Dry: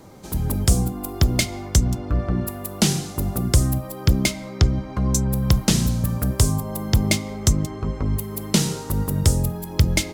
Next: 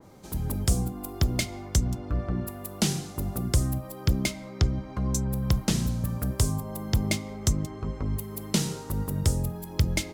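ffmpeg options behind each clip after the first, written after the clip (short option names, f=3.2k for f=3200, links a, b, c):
-af "adynamicequalizer=threshold=0.01:dfrequency=2700:dqfactor=0.7:tfrequency=2700:tqfactor=0.7:attack=5:release=100:ratio=0.375:range=2:mode=cutabove:tftype=highshelf,volume=-6.5dB"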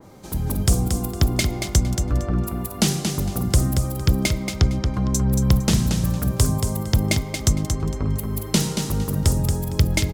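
-af "aecho=1:1:229|458|687:0.501|0.12|0.0289,volume=5.5dB"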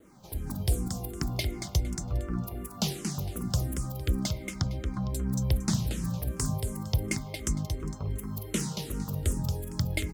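-filter_complex "[0:a]acrusher=bits=9:mix=0:aa=0.000001,asplit=2[a][b];[b]afreqshift=-2.7[c];[a][c]amix=inputs=2:normalize=1,volume=-7dB"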